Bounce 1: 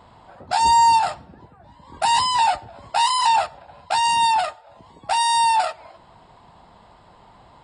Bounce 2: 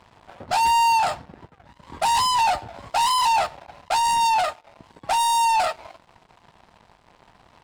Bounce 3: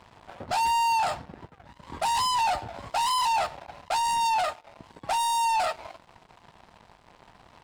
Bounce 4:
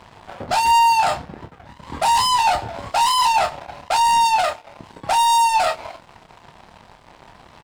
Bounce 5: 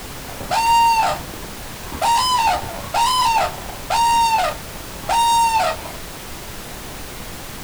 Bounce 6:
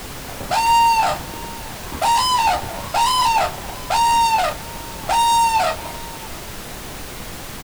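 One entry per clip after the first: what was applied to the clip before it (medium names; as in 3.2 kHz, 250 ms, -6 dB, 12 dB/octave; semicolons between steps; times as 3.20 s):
waveshaping leveller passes 3; trim -7.5 dB
peak limiter -21.5 dBFS, peak gain reduction 6 dB
doubling 28 ms -8 dB; trim +7.5 dB
added noise pink -32 dBFS
delay 674 ms -23 dB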